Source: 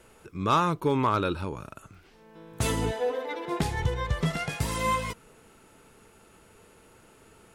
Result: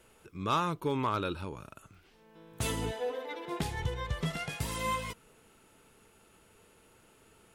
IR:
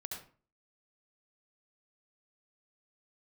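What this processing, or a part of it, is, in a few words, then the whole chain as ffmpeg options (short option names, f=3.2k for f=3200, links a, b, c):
presence and air boost: -af "equalizer=f=3.1k:t=o:w=0.77:g=3.5,highshelf=f=11k:g=6.5,volume=-6.5dB"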